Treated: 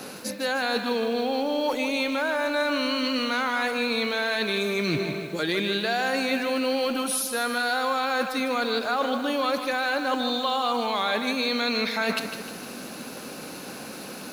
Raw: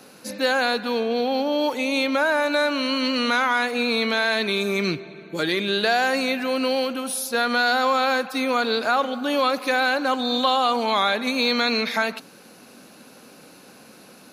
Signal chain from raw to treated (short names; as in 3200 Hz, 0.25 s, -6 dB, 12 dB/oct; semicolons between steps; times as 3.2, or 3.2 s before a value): reverse; compressor 6:1, threshold -33 dBFS, peak gain reduction 16 dB; reverse; lo-fi delay 0.154 s, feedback 55%, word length 9-bit, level -8.5 dB; gain +9 dB